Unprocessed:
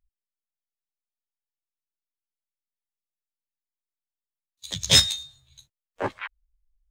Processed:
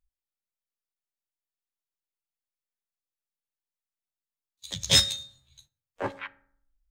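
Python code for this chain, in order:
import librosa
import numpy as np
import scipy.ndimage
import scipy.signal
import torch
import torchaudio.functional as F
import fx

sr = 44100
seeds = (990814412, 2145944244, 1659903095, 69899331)

y = fx.rev_fdn(x, sr, rt60_s=0.6, lf_ratio=1.25, hf_ratio=0.5, size_ms=11.0, drr_db=15.0)
y = y * librosa.db_to_amplitude(-3.5)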